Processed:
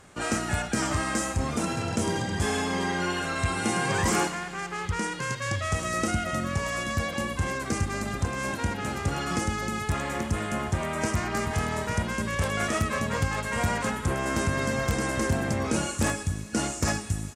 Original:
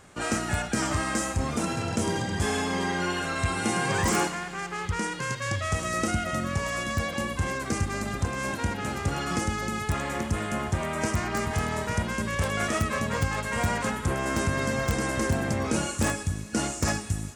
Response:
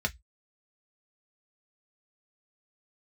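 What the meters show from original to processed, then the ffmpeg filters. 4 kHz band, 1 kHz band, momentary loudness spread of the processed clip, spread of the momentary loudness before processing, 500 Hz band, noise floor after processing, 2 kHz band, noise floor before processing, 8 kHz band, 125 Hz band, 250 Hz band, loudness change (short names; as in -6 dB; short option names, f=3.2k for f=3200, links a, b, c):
0.0 dB, 0.0 dB, 3 LU, 3 LU, 0.0 dB, -37 dBFS, 0.0 dB, -37 dBFS, 0.0 dB, 0.0 dB, 0.0 dB, 0.0 dB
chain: -af "aresample=32000,aresample=44100"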